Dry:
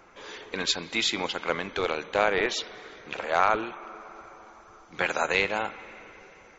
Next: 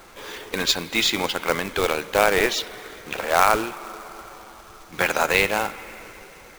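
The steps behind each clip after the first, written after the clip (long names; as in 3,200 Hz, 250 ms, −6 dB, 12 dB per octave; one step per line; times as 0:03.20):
low-shelf EQ 87 Hz +7 dB
log-companded quantiser 4 bits
level +5 dB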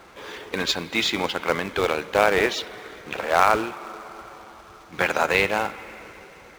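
high-pass filter 49 Hz
high-shelf EQ 6,400 Hz −12 dB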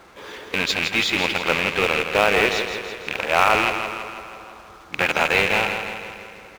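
loose part that buzzes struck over −38 dBFS, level −9 dBFS
repeating echo 164 ms, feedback 57%, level −7.5 dB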